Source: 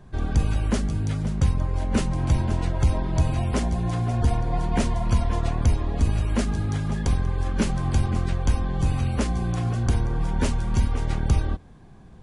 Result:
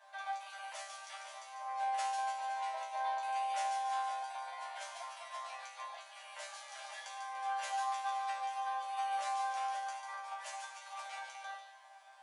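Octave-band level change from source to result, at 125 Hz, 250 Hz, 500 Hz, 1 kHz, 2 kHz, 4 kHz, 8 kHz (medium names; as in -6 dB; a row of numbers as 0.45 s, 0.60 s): under -40 dB, under -40 dB, -18.5 dB, -0.5 dB, -6.5 dB, -8.5 dB, -10.5 dB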